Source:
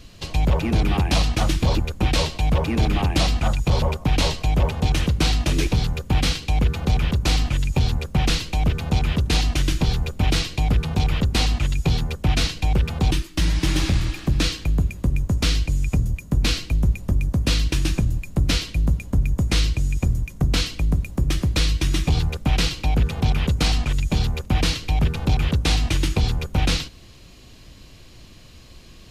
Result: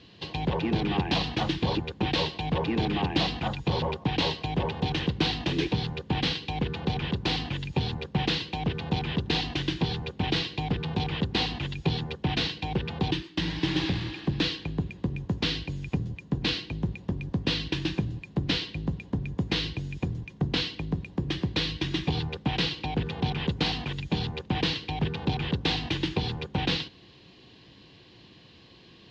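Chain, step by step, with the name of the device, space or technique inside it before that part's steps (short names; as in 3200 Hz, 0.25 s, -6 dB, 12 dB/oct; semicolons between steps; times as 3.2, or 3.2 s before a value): kitchen radio (speaker cabinet 170–4000 Hz, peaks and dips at 240 Hz -5 dB, 610 Hz -9 dB, 1300 Hz -10 dB, 2300 Hz -6 dB)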